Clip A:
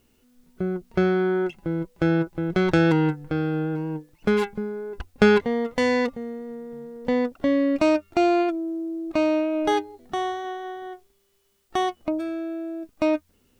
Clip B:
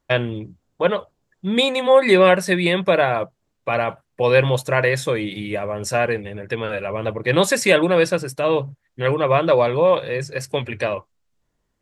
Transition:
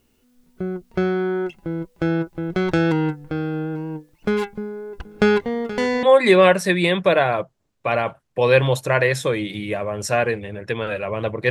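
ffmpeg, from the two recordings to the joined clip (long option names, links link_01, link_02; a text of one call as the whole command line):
ffmpeg -i cue0.wav -i cue1.wav -filter_complex "[0:a]asplit=3[link_01][link_02][link_03];[link_01]afade=type=out:start_time=4.99:duration=0.02[link_04];[link_02]aecho=1:1:476|952|1428|1904|2380:0.188|0.0923|0.0452|0.0222|0.0109,afade=type=in:start_time=4.99:duration=0.02,afade=type=out:start_time=6.03:duration=0.02[link_05];[link_03]afade=type=in:start_time=6.03:duration=0.02[link_06];[link_04][link_05][link_06]amix=inputs=3:normalize=0,apad=whole_dur=11.5,atrim=end=11.5,atrim=end=6.032[link_07];[1:a]atrim=start=1.848:end=7.32[link_08];[link_07][link_08]acrossfade=duration=0.004:curve1=hsin:curve2=hsin" out.wav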